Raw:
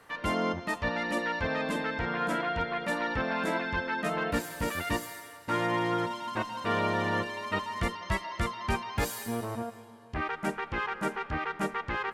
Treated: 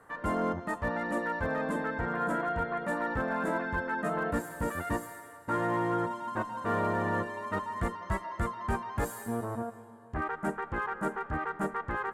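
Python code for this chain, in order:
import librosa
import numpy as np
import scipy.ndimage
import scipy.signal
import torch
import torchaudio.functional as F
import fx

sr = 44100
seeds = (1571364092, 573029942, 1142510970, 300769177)

y = fx.high_shelf(x, sr, hz=11000.0, db=-10.5)
y = np.clip(10.0 ** (23.0 / 20.0) * y, -1.0, 1.0) / 10.0 ** (23.0 / 20.0)
y = fx.band_shelf(y, sr, hz=3600.0, db=-13.5, octaves=1.7)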